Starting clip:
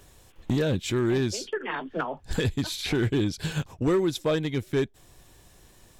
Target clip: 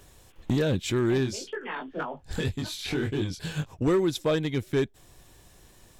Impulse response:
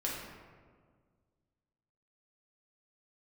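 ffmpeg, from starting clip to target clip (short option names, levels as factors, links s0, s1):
-filter_complex "[0:a]asplit=3[s0][s1][s2];[s0]afade=t=out:st=1.22:d=0.02[s3];[s1]flanger=delay=19.5:depth=4.2:speed=1.9,afade=t=in:st=1.22:d=0.02,afade=t=out:st=3.72:d=0.02[s4];[s2]afade=t=in:st=3.72:d=0.02[s5];[s3][s4][s5]amix=inputs=3:normalize=0"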